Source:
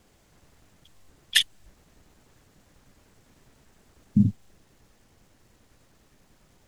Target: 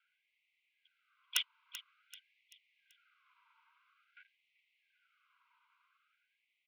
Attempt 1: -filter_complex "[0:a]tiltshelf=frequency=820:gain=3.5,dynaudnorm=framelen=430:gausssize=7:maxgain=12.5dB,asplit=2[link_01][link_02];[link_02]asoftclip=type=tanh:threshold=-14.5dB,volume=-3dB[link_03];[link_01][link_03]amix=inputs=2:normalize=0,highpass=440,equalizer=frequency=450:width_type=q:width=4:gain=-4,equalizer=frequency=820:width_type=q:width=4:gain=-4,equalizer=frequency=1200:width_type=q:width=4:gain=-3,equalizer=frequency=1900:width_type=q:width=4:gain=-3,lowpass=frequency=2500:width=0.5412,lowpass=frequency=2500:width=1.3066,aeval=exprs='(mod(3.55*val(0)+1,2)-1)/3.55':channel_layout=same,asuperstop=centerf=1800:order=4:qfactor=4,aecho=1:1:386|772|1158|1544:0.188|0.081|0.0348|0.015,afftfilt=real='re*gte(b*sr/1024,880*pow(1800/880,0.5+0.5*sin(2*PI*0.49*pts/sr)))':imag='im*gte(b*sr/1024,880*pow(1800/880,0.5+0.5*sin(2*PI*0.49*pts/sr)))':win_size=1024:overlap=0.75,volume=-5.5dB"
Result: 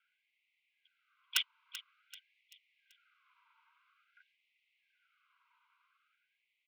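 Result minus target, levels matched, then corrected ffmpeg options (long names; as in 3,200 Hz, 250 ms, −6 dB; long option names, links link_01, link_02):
soft clipping: distortion −6 dB
-filter_complex "[0:a]tiltshelf=frequency=820:gain=3.5,dynaudnorm=framelen=430:gausssize=7:maxgain=12.5dB,asplit=2[link_01][link_02];[link_02]asoftclip=type=tanh:threshold=-25.5dB,volume=-3dB[link_03];[link_01][link_03]amix=inputs=2:normalize=0,highpass=440,equalizer=frequency=450:width_type=q:width=4:gain=-4,equalizer=frequency=820:width_type=q:width=4:gain=-4,equalizer=frequency=1200:width_type=q:width=4:gain=-3,equalizer=frequency=1900:width_type=q:width=4:gain=-3,lowpass=frequency=2500:width=0.5412,lowpass=frequency=2500:width=1.3066,aeval=exprs='(mod(3.55*val(0)+1,2)-1)/3.55':channel_layout=same,asuperstop=centerf=1800:order=4:qfactor=4,aecho=1:1:386|772|1158|1544:0.188|0.081|0.0348|0.015,afftfilt=real='re*gte(b*sr/1024,880*pow(1800/880,0.5+0.5*sin(2*PI*0.49*pts/sr)))':imag='im*gte(b*sr/1024,880*pow(1800/880,0.5+0.5*sin(2*PI*0.49*pts/sr)))':win_size=1024:overlap=0.75,volume=-5.5dB"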